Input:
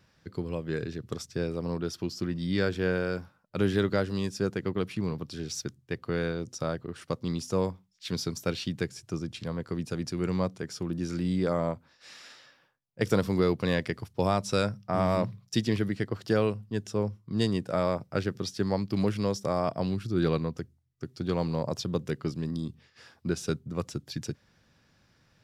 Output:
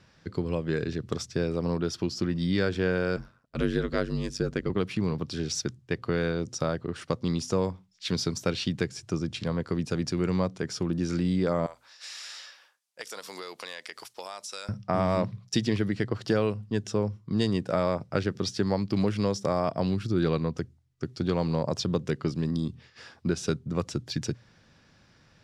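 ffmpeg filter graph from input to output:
ffmpeg -i in.wav -filter_complex "[0:a]asettb=1/sr,asplit=3[link_01][link_02][link_03];[link_01]atrim=end=3.164[link_04];[link_02]atrim=start=3.16:end=4.7,asetpts=PTS-STARTPTS,afade=type=in:duration=0.004:curve=qsin,afade=type=out:start_time=1.536:duration=0.004:curve=qsin,bandreject=frequency=830:width=5.3,aeval=exprs='val(0)*sin(2*PI*47*n/s)':channel_layout=same[link_05];[link_03]atrim=start=4.696[link_06];[link_04][link_05]acrossfade=duration=0.004:curve1=hsin:curve2=qsin[link_07];[link_07][link_06]acrossfade=duration=0.004:curve1=qsin:curve2=hsin,asettb=1/sr,asplit=3[link_08][link_09][link_10];[link_08]atrim=end=11.664[link_11];[link_09]atrim=start=11.66:end=14.69,asetpts=PTS-STARTPTS,afade=type=in:duration=0.004:curve=qsin,afade=type=out:start_time=3.026:duration=0.004:curve=qsin,highpass=690,aemphasis=mode=production:type=75kf,acompressor=threshold=-42dB:ratio=5:attack=3.2:release=140:knee=1:detection=peak[link_12];[link_10]atrim=start=14.686[link_13];[link_11][link_12]acrossfade=duration=0.004:curve1=hsin:curve2=qsin[link_14];[link_14][link_13]acrossfade=duration=0.004:curve1=qsin:curve2=hsin,lowpass=8200,bandreject=frequency=60:width_type=h:width=6,bandreject=frequency=120:width_type=h:width=6,acompressor=threshold=-30dB:ratio=2,volume=5.5dB" out.wav

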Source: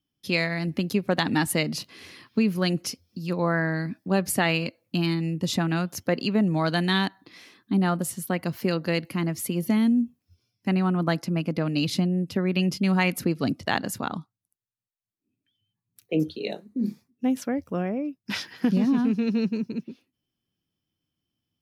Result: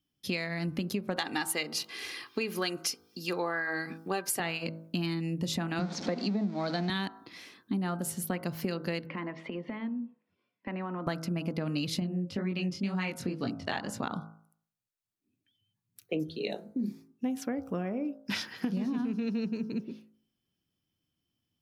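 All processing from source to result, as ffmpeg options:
ffmpeg -i in.wav -filter_complex "[0:a]asettb=1/sr,asplit=3[link_01][link_02][link_03];[link_01]atrim=end=1.164[link_04];[link_02]atrim=start=1.16:end=4.4,asetpts=PTS-STARTPTS,afade=type=in:duration=0.004:curve=qsin,afade=type=out:start_time=3.236:duration=0.004:curve=qsin,highpass=frequency=640:poles=1,acontrast=39,aecho=1:1:2.5:0.45,atrim=end_sample=142884[link_05];[link_03]atrim=start=4.396[link_06];[link_04][link_05]acrossfade=duration=0.004:curve1=hsin:curve2=qsin[link_07];[link_07][link_06]acrossfade=duration=0.004:curve1=qsin:curve2=hsin,asettb=1/sr,asplit=3[link_08][link_09][link_10];[link_08]atrim=end=5.794[link_11];[link_09]atrim=start=5.79:end=6.9,asetpts=PTS-STARTPTS,afade=type=in:duration=0.004:curve=qsin,afade=type=out:start_time=1.106:duration=0.004:curve=qsin,aeval=exprs='val(0)+0.5*0.0398*sgn(val(0))':channel_layout=same,highpass=frequency=190:width=0.5412,highpass=frequency=190:width=1.3066,equalizer=frequency=200:width_type=q:width=4:gain=8,equalizer=frequency=740:width_type=q:width=4:gain=4,equalizer=frequency=1100:width_type=q:width=4:gain=-4,equalizer=frequency=1700:width_type=q:width=4:gain=-4,equalizer=frequency=2900:width_type=q:width=4:gain=-9,equalizer=frequency=4100:width_type=q:width=4:gain=3,lowpass=frequency=5400:width=0.5412,lowpass=frequency=5400:width=1.3066[link_12];[link_10]atrim=start=6.896[link_13];[link_11][link_12]acrossfade=duration=0.004:curve1=hsin:curve2=qsin[link_14];[link_14][link_13]acrossfade=duration=0.004:curve1=qsin:curve2=hsin,asettb=1/sr,asplit=3[link_15][link_16][link_17];[link_15]atrim=end=9.064[link_18];[link_16]atrim=start=9.06:end=11.07,asetpts=PTS-STARTPTS,afade=type=in:duration=0.004:curve=qsin,afade=type=out:start_time=2.006:duration=0.004:curve=qsin,highpass=frequency=200:width=0.5412,highpass=frequency=200:width=1.3066,equalizer=frequency=550:width_type=q:width=4:gain=7,equalizer=frequency=1000:width_type=q:width=4:gain=9,equalizer=frequency=1900:width_type=q:width=4:gain=7,lowpass=frequency=3000:width=0.5412,lowpass=frequency=3000:width=1.3066,acompressor=threshold=-32dB:ratio=12:attack=3.2:release=140:knee=1:detection=peak[link_19];[link_17]atrim=start=11.066[link_20];[link_18][link_19]acrossfade=duration=0.004:curve1=hsin:curve2=qsin[link_21];[link_21][link_20]acrossfade=duration=0.004:curve1=qsin:curve2=hsin,asettb=1/sr,asplit=3[link_22][link_23][link_24];[link_22]atrim=end=12.004[link_25];[link_23]atrim=start=12:end=14,asetpts=PTS-STARTPTS,afade=type=in:duration=0.004:curve=qsin,afade=type=out:start_time=1.996:duration=0.004:curve=qsin,lowpass=7600,flanger=delay=17:depth=5.6:speed=2[link_26];[link_24]atrim=start=13.996[link_27];[link_25][link_26]acrossfade=duration=0.004:curve1=hsin:curve2=qsin[link_28];[link_28][link_27]acrossfade=duration=0.004:curve1=qsin:curve2=hsin,bandreject=frequency=54.18:width_type=h:width=4,bandreject=frequency=108.36:width_type=h:width=4,bandreject=frequency=162.54:width_type=h:width=4,bandreject=frequency=216.72:width_type=h:width=4,bandreject=frequency=270.9:width_type=h:width=4,bandreject=frequency=325.08:width_type=h:width=4,bandreject=frequency=379.26:width_type=h:width=4,bandreject=frequency=433.44:width_type=h:width=4,bandreject=frequency=487.62:width_type=h:width=4,bandreject=frequency=541.8:width_type=h:width=4,bandreject=frequency=595.98:width_type=h:width=4,bandreject=frequency=650.16:width_type=h:width=4,bandreject=frequency=704.34:width_type=h:width=4,bandreject=frequency=758.52:width_type=h:width=4,bandreject=frequency=812.7:width_type=h:width=4,bandreject=frequency=866.88:width_type=h:width=4,bandreject=frequency=921.06:width_type=h:width=4,bandreject=frequency=975.24:width_type=h:width=4,bandreject=frequency=1029.42:width_type=h:width=4,bandreject=frequency=1083.6:width_type=h:width=4,bandreject=frequency=1137.78:width_type=h:width=4,bandreject=frequency=1191.96:width_type=h:width=4,bandreject=frequency=1246.14:width_type=h:width=4,bandreject=frequency=1300.32:width_type=h:width=4,bandreject=frequency=1354.5:width_type=h:width=4,bandreject=frequency=1408.68:width_type=h:width=4,bandreject=frequency=1462.86:width_type=h:width=4,bandreject=frequency=1517.04:width_type=h:width=4,bandreject=frequency=1571.22:width_type=h:width=4,acompressor=threshold=-29dB:ratio=6" out.wav

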